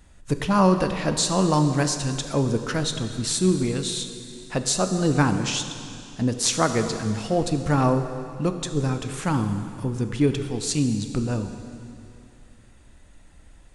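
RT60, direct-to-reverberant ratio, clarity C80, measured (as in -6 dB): 2.6 s, 7.0 dB, 9.0 dB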